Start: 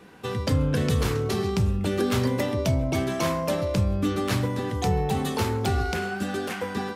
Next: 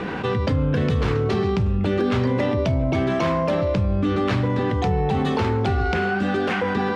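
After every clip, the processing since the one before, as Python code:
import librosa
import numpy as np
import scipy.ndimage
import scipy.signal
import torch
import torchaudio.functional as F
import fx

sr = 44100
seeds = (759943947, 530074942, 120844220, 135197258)

y = scipy.signal.sosfilt(scipy.signal.butter(2, 3100.0, 'lowpass', fs=sr, output='sos'), x)
y = fx.env_flatten(y, sr, amount_pct=70)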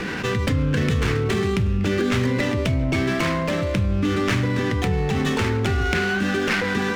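y = fx.curve_eq(x, sr, hz=(360.0, 780.0, 1900.0), db=(0, -7, 7))
y = fx.running_max(y, sr, window=5)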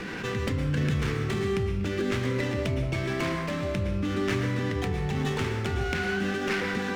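y = fx.rev_plate(x, sr, seeds[0], rt60_s=0.67, hf_ratio=0.8, predelay_ms=100, drr_db=5.0)
y = y * 10.0 ** (-8.0 / 20.0)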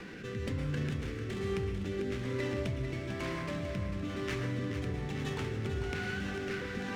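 y = fx.rotary(x, sr, hz=1.1)
y = fx.echo_feedback(y, sr, ms=446, feedback_pct=59, wet_db=-8.5)
y = y * 10.0 ** (-6.5 / 20.0)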